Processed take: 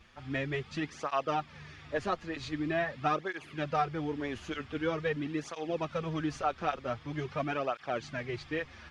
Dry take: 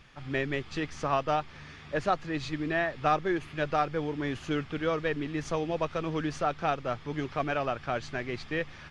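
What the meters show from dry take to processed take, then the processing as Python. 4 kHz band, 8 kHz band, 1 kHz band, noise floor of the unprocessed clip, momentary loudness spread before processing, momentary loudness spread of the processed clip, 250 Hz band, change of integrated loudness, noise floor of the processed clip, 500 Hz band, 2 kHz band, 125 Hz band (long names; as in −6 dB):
−3.0 dB, −3.0 dB, −3.0 dB, −48 dBFS, 6 LU, 6 LU, −3.0 dB, −3.5 dB, −53 dBFS, −3.5 dB, −3.5 dB, −3.0 dB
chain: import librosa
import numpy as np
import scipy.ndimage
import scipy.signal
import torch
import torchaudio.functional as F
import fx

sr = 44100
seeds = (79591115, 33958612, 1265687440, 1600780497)

y = fx.flanger_cancel(x, sr, hz=0.45, depth_ms=7.5)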